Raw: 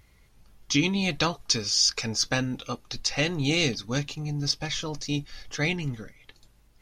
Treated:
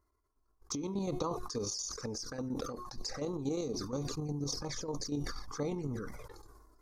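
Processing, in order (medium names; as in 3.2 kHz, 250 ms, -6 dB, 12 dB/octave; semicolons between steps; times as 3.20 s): de-hum 362.1 Hz, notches 40; gate -47 dBFS, range -19 dB; FFT filter 160 Hz 0 dB, 470 Hz +11 dB, 700 Hz +3 dB, 1.1 kHz +15 dB, 2.9 kHz -21 dB, 4.7 kHz -1 dB, 8.1 kHz +1 dB; compression 4:1, threshold -33 dBFS, peak gain reduction 17 dB; square tremolo 8.4 Hz, depth 60%, duty 30%; touch-sensitive flanger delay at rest 3 ms, full sweep at -35 dBFS; decay stretcher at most 31 dB/s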